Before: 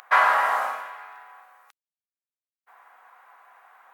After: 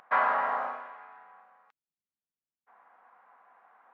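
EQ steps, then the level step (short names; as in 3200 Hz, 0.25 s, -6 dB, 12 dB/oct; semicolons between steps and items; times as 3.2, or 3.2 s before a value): tape spacing loss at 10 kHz 36 dB; bell 180 Hz +11.5 dB 1.8 oct; -3.5 dB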